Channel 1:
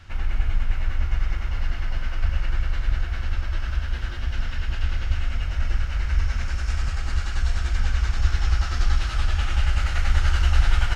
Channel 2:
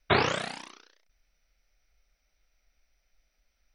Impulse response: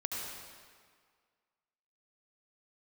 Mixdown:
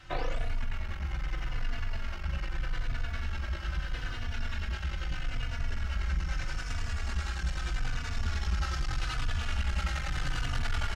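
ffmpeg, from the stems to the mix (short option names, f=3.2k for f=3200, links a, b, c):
-filter_complex "[0:a]lowshelf=f=79:g=-5.5,asoftclip=type=tanh:threshold=-25.5dB,volume=2dB[a];[1:a]equalizer=f=590:w=1.5:g=11.5,volume=-14dB[b];[a][b]amix=inputs=2:normalize=0,asplit=2[c][d];[d]adelay=3.4,afreqshift=-0.79[e];[c][e]amix=inputs=2:normalize=1"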